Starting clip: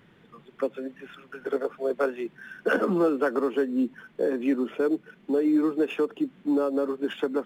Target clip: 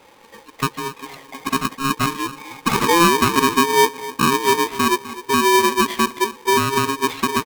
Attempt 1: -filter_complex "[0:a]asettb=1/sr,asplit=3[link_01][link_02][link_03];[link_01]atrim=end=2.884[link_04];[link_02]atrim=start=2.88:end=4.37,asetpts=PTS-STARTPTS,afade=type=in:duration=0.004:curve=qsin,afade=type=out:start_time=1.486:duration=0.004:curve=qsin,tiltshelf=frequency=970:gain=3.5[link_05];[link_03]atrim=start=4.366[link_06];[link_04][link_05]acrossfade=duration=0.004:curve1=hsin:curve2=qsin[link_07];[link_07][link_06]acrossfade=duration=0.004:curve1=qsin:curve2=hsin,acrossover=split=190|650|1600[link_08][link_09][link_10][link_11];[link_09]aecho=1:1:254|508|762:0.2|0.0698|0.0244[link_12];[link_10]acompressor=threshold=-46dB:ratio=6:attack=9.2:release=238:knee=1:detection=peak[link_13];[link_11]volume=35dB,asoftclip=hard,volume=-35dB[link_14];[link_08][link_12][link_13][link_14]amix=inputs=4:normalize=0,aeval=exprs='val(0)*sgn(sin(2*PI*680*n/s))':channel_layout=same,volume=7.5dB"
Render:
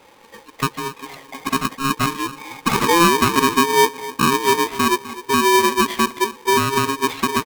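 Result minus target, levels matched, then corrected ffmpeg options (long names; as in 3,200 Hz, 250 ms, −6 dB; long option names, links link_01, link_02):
downward compressor: peak gain reduction −5.5 dB
-filter_complex "[0:a]asettb=1/sr,asplit=3[link_01][link_02][link_03];[link_01]atrim=end=2.884[link_04];[link_02]atrim=start=2.88:end=4.37,asetpts=PTS-STARTPTS,afade=type=in:duration=0.004:curve=qsin,afade=type=out:start_time=1.486:duration=0.004:curve=qsin,tiltshelf=frequency=970:gain=3.5[link_05];[link_03]atrim=start=4.366[link_06];[link_04][link_05]acrossfade=duration=0.004:curve1=hsin:curve2=qsin[link_07];[link_07][link_06]acrossfade=duration=0.004:curve1=qsin:curve2=hsin,acrossover=split=190|650|1600[link_08][link_09][link_10][link_11];[link_09]aecho=1:1:254|508|762:0.2|0.0698|0.0244[link_12];[link_10]acompressor=threshold=-52.5dB:ratio=6:attack=9.2:release=238:knee=1:detection=peak[link_13];[link_11]volume=35dB,asoftclip=hard,volume=-35dB[link_14];[link_08][link_12][link_13][link_14]amix=inputs=4:normalize=0,aeval=exprs='val(0)*sgn(sin(2*PI*680*n/s))':channel_layout=same,volume=7.5dB"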